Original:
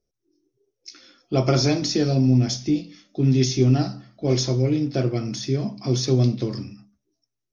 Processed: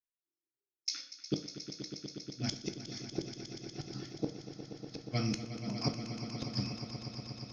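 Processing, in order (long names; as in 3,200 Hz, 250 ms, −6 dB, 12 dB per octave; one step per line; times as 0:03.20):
noise gate −47 dBFS, range −31 dB
high-shelf EQ 2,400 Hz +10.5 dB
downward compressor 10 to 1, threshold −20 dBFS, peak gain reduction 9 dB
auto-filter notch sine 0.73 Hz 380–3,400 Hz
gate with flip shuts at −17 dBFS, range −40 dB
echo that builds up and dies away 120 ms, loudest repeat 5, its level −12 dB
convolution reverb RT60 0.45 s, pre-delay 10 ms, DRR 9 dB
level −3 dB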